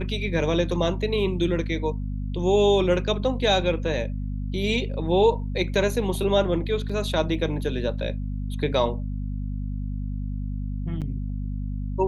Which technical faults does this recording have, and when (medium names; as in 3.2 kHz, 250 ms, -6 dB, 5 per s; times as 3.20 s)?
hum 50 Hz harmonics 5 -29 dBFS
6.89–6.90 s: dropout 5.2 ms
11.01–11.02 s: dropout 7.6 ms